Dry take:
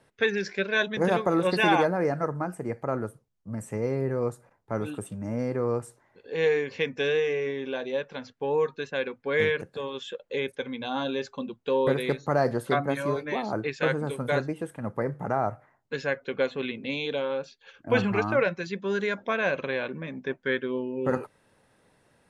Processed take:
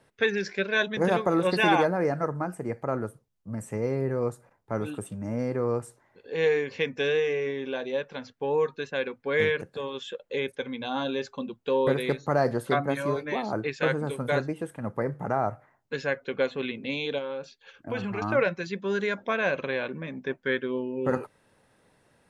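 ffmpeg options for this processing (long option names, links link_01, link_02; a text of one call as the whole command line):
ffmpeg -i in.wav -filter_complex "[0:a]asettb=1/sr,asplit=3[link_01][link_02][link_03];[link_01]atrim=end=17.184[link_04];[link_02]atrim=start=17.18:end=18.22,asetpts=PTS-STARTPTS,afade=type=in:duration=0.004:curve=qsin,afade=type=out:start_time=1.036:duration=0.004:curve=qsin,acompressor=threshold=-31dB:ratio=2.5:attack=3.2:release=140:knee=1:detection=peak[link_05];[link_03]atrim=start=18.216[link_06];[link_04][link_05]acrossfade=duration=0.004:curve1=hsin:curve2=qsin[link_07];[link_07][link_06]acrossfade=duration=0.004:curve1=qsin:curve2=hsin" out.wav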